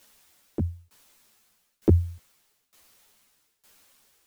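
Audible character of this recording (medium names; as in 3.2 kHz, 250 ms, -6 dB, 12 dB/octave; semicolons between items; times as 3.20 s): a quantiser's noise floor 10-bit, dither triangular; tremolo saw down 1.1 Hz, depth 95%; a shimmering, thickened sound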